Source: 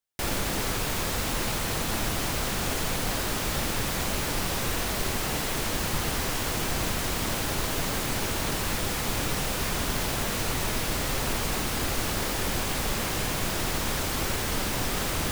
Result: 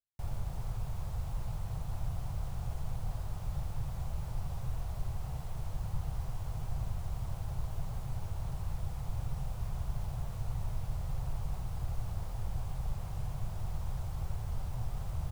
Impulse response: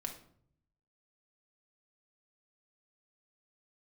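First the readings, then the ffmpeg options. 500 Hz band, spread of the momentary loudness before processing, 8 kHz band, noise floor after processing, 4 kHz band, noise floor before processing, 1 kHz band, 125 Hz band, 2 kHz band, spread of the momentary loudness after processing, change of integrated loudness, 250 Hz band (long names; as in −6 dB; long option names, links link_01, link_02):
−19.5 dB, 0 LU, −26.0 dB, −41 dBFS, −27.5 dB, −30 dBFS, −17.0 dB, −3.0 dB, −27.0 dB, 1 LU, −12.0 dB, −16.0 dB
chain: -af "firequalizer=gain_entry='entry(130,0);entry(240,-26);entry(740,-12);entry(1700,-26);entry(8100,-24)':delay=0.05:min_phase=1,volume=-2dB"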